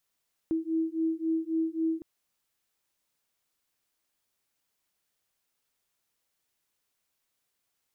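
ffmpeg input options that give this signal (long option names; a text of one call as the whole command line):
ffmpeg -f lavfi -i "aevalsrc='0.0335*(sin(2*PI*322*t)+sin(2*PI*325.7*t))':duration=1.51:sample_rate=44100" out.wav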